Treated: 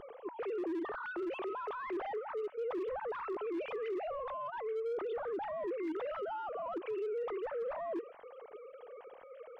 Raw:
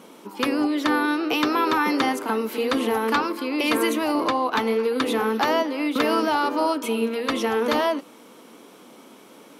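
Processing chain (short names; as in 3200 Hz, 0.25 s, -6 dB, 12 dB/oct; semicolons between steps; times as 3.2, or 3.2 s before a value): sine-wave speech; reverse; compressor 5:1, threshold -33 dBFS, peak gain reduction 20.5 dB; reverse; high shelf 2600 Hz -10 dB; soft clip -28.5 dBFS, distortion -21 dB; limiter -35.5 dBFS, peak gain reduction 6 dB; on a send at -18 dB: Chebyshev high-pass 1300 Hz, order 8 + reverb RT60 0.30 s, pre-delay 0.11 s; on the sum: upward compressor, threshold -60 dBFS; tilt -2.5 dB/oct; wavefolder -32.5 dBFS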